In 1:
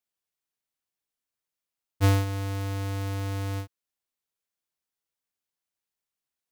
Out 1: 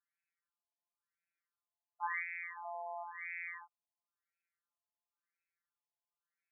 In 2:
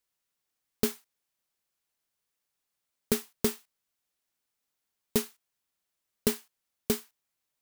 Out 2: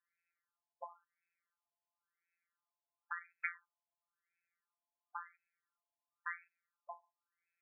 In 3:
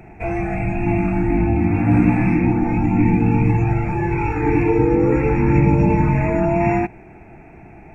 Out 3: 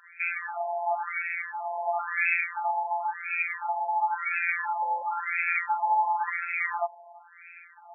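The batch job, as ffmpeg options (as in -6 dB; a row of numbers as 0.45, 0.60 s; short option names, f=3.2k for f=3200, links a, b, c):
-af "crystalizer=i=9:c=0,afftfilt=real='hypot(re,im)*cos(PI*b)':imag='0':win_size=1024:overlap=0.75,afftfilt=real='re*between(b*sr/1024,730*pow(1900/730,0.5+0.5*sin(2*PI*0.96*pts/sr))/1.41,730*pow(1900/730,0.5+0.5*sin(2*PI*0.96*pts/sr))*1.41)':imag='im*between(b*sr/1024,730*pow(1900/730,0.5+0.5*sin(2*PI*0.96*pts/sr))/1.41,730*pow(1900/730,0.5+0.5*sin(2*PI*0.96*pts/sr))*1.41)':win_size=1024:overlap=0.75"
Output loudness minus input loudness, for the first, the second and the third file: -13.0, -15.0, -10.5 LU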